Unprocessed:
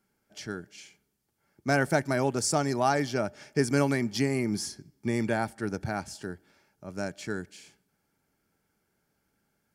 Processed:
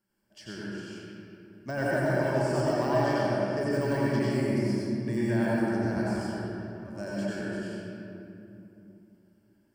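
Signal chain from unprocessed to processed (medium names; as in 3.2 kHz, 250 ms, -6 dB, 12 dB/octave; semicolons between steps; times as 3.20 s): de-esser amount 95%; rippled EQ curve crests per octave 1.3, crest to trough 8 dB; reverberation RT60 2.9 s, pre-delay 80 ms, DRR -7.5 dB; trim -8 dB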